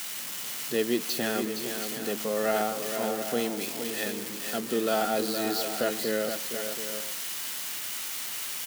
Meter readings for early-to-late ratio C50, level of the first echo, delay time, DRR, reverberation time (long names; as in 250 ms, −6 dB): no reverb audible, −20.0 dB, 204 ms, no reverb audible, no reverb audible